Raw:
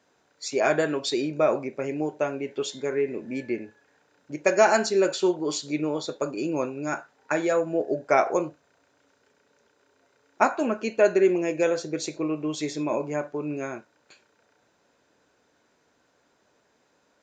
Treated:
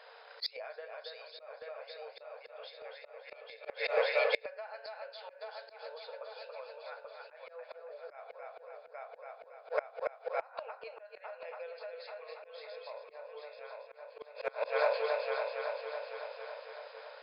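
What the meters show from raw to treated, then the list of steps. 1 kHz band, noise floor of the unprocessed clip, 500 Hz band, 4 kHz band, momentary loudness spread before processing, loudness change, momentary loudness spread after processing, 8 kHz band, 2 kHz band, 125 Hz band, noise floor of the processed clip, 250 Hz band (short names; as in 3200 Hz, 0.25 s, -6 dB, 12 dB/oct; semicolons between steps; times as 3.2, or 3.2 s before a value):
-12.5 dB, -68 dBFS, -12.0 dB, -8.0 dB, 10 LU, -13.5 dB, 18 LU, under -40 dB, -8.5 dB, under -40 dB, -57 dBFS, under -40 dB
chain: FFT band-pass 440–5200 Hz; on a send: multi-head echo 0.278 s, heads first and third, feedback 52%, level -6.5 dB; on the sum: compressor 20:1, threshold -26 dBFS, peak gain reduction 13.5 dB; flipped gate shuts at -28 dBFS, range -28 dB; in parallel at -10 dB: overloaded stage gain 34 dB; on the sum: auto swell 0.124 s; gain +11 dB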